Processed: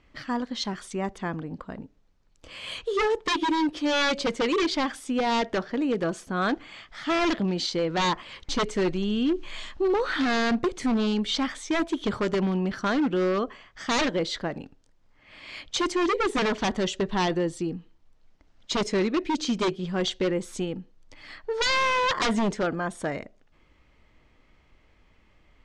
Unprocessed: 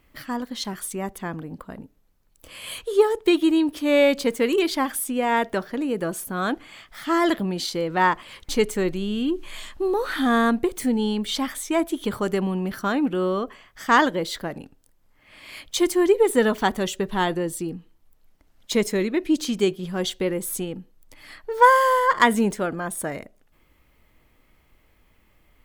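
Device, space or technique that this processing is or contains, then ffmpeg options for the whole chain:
synthesiser wavefolder: -filter_complex "[0:a]asettb=1/sr,asplit=3[a][b][c];[a]atrim=end=3.164[d];[b]atrim=start=3.16:end=4.6,asetpts=PTS-STARTPTS,afade=t=in:d=0.004:c=qsin,afade=t=out:st=1.436:d=0.004:c=qsin,aecho=1:1:5.7:0.36,atrim=end_sample=63504[e];[c]atrim=start=4.596[f];[d][e]acrossfade=d=0.004:c1=hsin:c2=qsin[g];[g][f]acrossfade=d=0.004:c1=qsin:c2=hsin,aeval=exprs='0.119*(abs(mod(val(0)/0.119+3,4)-2)-1)':c=same,lowpass=f=6.5k:w=0.5412,lowpass=f=6.5k:w=1.3066"

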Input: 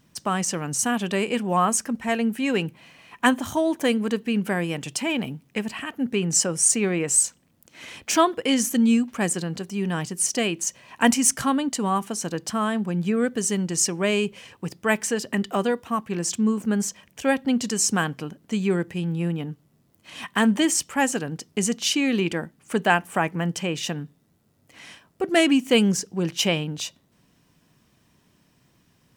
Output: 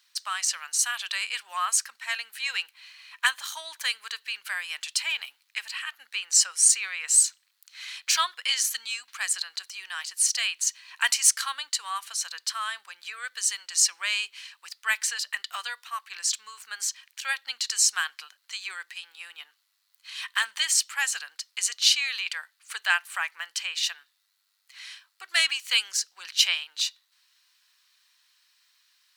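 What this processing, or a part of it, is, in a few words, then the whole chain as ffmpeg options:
headphones lying on a table: -af "highpass=f=1.3k:w=0.5412,highpass=f=1.3k:w=1.3066,equalizer=f=4.2k:t=o:w=0.4:g=11.5"

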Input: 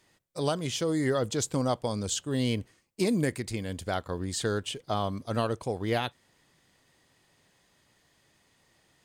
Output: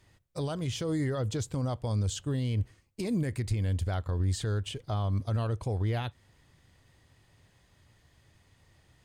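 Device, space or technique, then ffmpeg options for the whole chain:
car stereo with a boomy subwoofer: -af "lowshelf=f=130:t=q:w=1.5:g=7,alimiter=level_in=1dB:limit=-24dB:level=0:latency=1:release=129,volume=-1dB,bass=f=250:g=6,treble=f=4k:g=-3"

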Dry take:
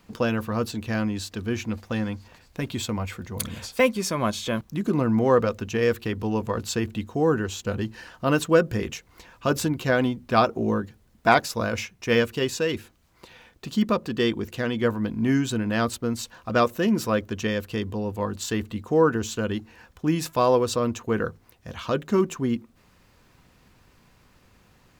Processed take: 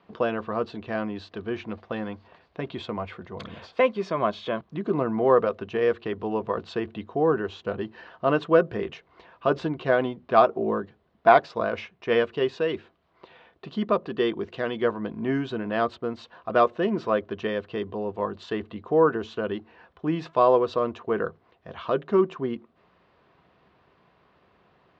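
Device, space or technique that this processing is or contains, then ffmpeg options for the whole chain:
guitar cabinet: -filter_complex "[0:a]highpass=100,equalizer=f=110:t=q:w=4:g=-8,equalizer=f=240:t=q:w=4:g=-5,equalizer=f=400:t=q:w=4:g=6,equalizer=f=670:t=q:w=4:g=8,equalizer=f=1.1k:t=q:w=4:g=5,equalizer=f=2.4k:t=q:w=4:g=-3,lowpass=f=3.6k:w=0.5412,lowpass=f=3.6k:w=1.3066,asettb=1/sr,asplit=3[a][b][c];[a]atrim=end=14.394[d];[b]atrim=start=14.39:end=14.94,asetpts=PTS-STARTPTS,afade=t=in:d=0.004:c=qsin,afade=t=out:st=0.546:d=0.004:c=qsin,highshelf=f=5.4k:g=8.5[e];[c]atrim=start=14.936[f];[d][e]acrossfade=d=0.004:c1=hsin:c2=qsin[g];[g][f]acrossfade=d=0.004:c1=qsin:c2=hsin,volume=-3dB"

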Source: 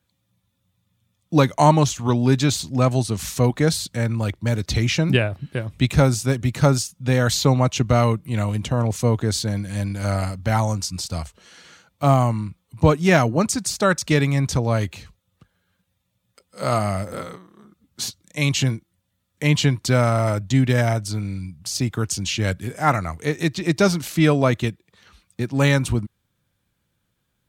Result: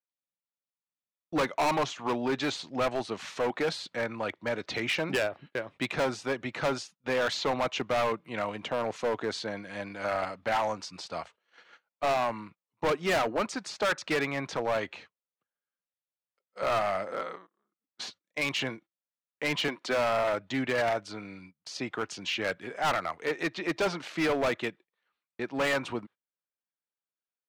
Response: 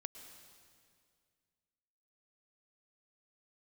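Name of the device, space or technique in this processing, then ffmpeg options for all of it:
walkie-talkie: -filter_complex "[0:a]asettb=1/sr,asplit=3[a][b][c];[a]atrim=end=19.684[d];[b]atrim=start=19.68:end=20.24,asetpts=PTS-STARTPTS,afade=t=in:d=0.004:c=qsin,afade=t=out:st=0.556:d=0.004:c=qsin,highpass=f=200:w=0.5412,highpass=f=200:w=1.3066[e];[c]atrim=start=20.236[f];[d][e]acrossfade=d=0.004:c1=hsin:c2=qsin[g];[g][f]acrossfade=d=0.004:c1=qsin:c2=hsin,highpass=470,lowpass=2.6k,asoftclip=type=hard:threshold=-23.5dB,agate=range=-24dB:threshold=-49dB:ratio=16:detection=peak"

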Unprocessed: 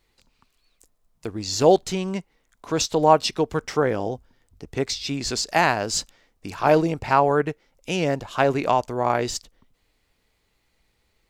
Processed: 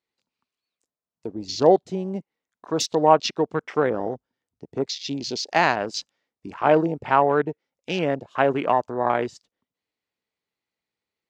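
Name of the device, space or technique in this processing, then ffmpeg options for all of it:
over-cleaned archive recording: -af "highpass=160,lowpass=7.3k,afwtdn=0.0224"

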